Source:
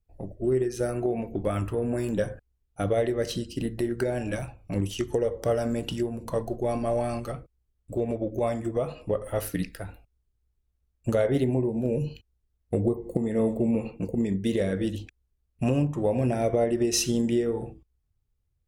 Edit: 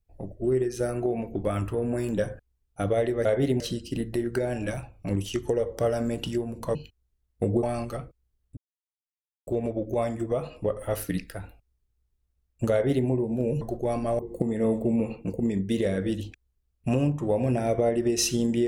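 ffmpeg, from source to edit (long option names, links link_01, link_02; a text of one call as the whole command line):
ffmpeg -i in.wav -filter_complex "[0:a]asplit=8[link_01][link_02][link_03][link_04][link_05][link_06][link_07][link_08];[link_01]atrim=end=3.252[link_09];[link_02]atrim=start=11.168:end=11.522[link_10];[link_03]atrim=start=3.248:end=6.402[link_11];[link_04]atrim=start=12.058:end=12.942[link_12];[link_05]atrim=start=6.978:end=7.92,asetpts=PTS-STARTPTS,afade=type=out:start_time=0.938:duration=0.004:curve=hsin,apad=pad_dur=0.9[link_13];[link_06]atrim=start=7.92:end=12.062,asetpts=PTS-STARTPTS,afade=type=in:duration=0.004:curve=hsin[link_14];[link_07]atrim=start=6.398:end=6.982[link_15];[link_08]atrim=start=12.938[link_16];[link_09][link_10]acrossfade=duration=0.004:curve1=hsin:curve2=hsin[link_17];[link_17][link_11]acrossfade=duration=0.004:curve1=hsin:curve2=hsin[link_18];[link_18][link_12]acrossfade=duration=0.004:curve1=hsin:curve2=hsin[link_19];[link_13][link_14]concat=n=2:v=0:a=1[link_20];[link_19][link_20]acrossfade=duration=0.004:curve1=hsin:curve2=hsin[link_21];[link_21][link_15]acrossfade=duration=0.004:curve1=hsin:curve2=hsin[link_22];[link_22][link_16]acrossfade=duration=0.004:curve1=hsin:curve2=hsin" out.wav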